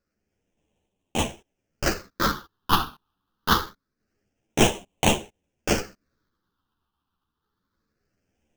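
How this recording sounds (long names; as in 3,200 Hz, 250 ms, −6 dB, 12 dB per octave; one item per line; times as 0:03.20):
aliases and images of a low sample rate 2,100 Hz, jitter 20%
phaser sweep stages 6, 0.25 Hz, lowest notch 570–1,300 Hz
sample-and-hold tremolo
a shimmering, thickened sound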